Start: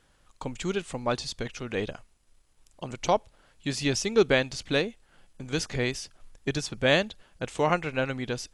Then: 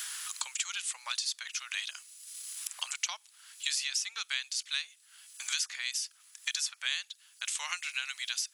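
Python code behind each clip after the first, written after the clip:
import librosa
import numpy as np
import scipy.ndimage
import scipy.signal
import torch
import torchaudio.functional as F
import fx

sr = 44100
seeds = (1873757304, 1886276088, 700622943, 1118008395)

y = scipy.signal.sosfilt(scipy.signal.butter(4, 1100.0, 'highpass', fs=sr, output='sos'), x)
y = np.diff(y, prepend=0.0)
y = fx.band_squash(y, sr, depth_pct=100)
y = y * 10.0 ** (6.0 / 20.0)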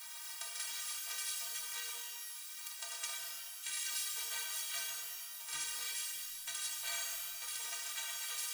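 y = fx.spec_clip(x, sr, under_db=29)
y = fx.stiff_resonator(y, sr, f0_hz=140.0, decay_s=0.25, stiffness=0.03)
y = fx.rev_shimmer(y, sr, seeds[0], rt60_s=2.0, semitones=12, shimmer_db=-2, drr_db=-2.0)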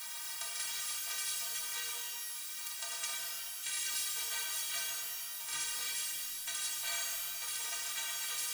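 y = fx.law_mismatch(x, sr, coded='mu')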